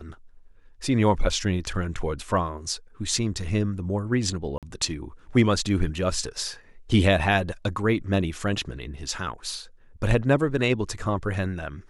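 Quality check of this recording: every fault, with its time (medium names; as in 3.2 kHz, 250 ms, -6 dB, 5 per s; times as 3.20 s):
4.58–4.63 s: dropout 47 ms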